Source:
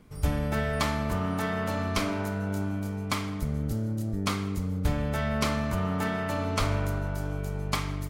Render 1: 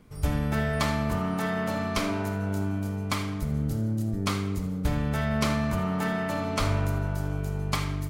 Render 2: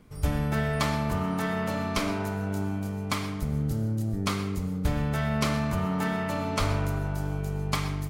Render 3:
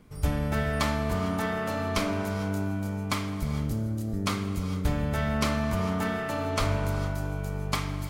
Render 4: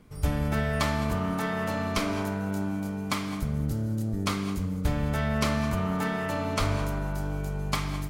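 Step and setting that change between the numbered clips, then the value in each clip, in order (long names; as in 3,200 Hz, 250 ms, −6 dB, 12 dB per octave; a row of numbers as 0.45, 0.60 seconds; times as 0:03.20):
reverb whose tail is shaped and stops, gate: 100, 150, 480, 240 milliseconds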